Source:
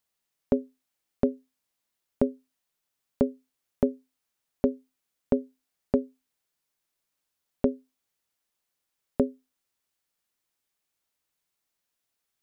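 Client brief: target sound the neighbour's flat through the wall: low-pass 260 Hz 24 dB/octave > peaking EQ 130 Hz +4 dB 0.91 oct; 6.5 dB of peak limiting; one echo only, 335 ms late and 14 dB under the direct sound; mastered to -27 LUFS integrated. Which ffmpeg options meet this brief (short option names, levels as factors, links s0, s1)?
-af "alimiter=limit=0.178:level=0:latency=1,lowpass=f=260:w=0.5412,lowpass=f=260:w=1.3066,equalizer=f=130:t=o:w=0.91:g=4,aecho=1:1:335:0.2,volume=3.98"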